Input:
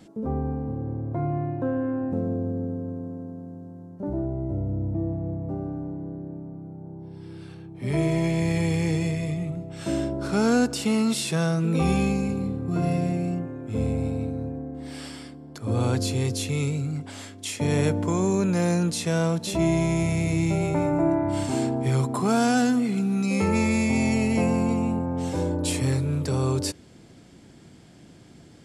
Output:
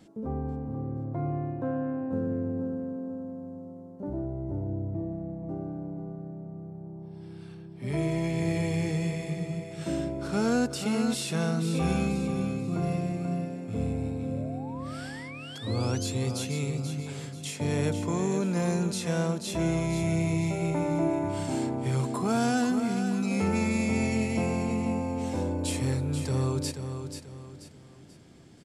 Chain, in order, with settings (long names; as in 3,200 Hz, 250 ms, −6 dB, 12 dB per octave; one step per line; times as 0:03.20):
sound drawn into the spectrogram rise, 0:14.31–0:16.15, 510–7,800 Hz −40 dBFS
repeating echo 485 ms, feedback 36%, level −8 dB
level −5 dB